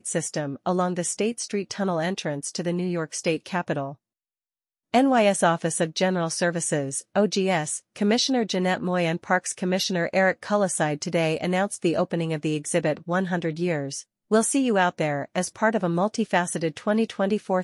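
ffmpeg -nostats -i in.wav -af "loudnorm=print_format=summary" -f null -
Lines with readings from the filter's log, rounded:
Input Integrated:    -24.6 LUFS
Input True Peak:      -6.7 dBTP
Input LRA:             3.4 LU
Input Threshold:     -34.6 LUFS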